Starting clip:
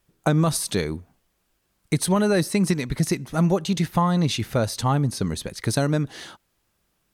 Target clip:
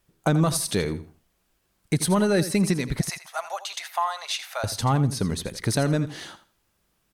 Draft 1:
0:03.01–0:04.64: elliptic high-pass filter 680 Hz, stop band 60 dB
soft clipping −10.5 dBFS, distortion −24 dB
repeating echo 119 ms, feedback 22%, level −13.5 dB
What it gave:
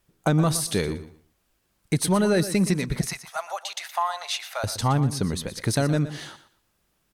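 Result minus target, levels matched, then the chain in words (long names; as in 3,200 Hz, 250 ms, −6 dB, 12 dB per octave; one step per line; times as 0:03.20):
echo 36 ms late
0:03.01–0:04.64: elliptic high-pass filter 680 Hz, stop band 60 dB
soft clipping −10.5 dBFS, distortion −24 dB
repeating echo 83 ms, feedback 22%, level −13.5 dB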